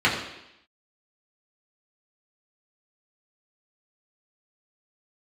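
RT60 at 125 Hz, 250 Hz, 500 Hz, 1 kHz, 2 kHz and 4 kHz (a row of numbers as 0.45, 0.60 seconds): 0.70, 0.85, 0.80, 0.85, 0.90, 0.90 seconds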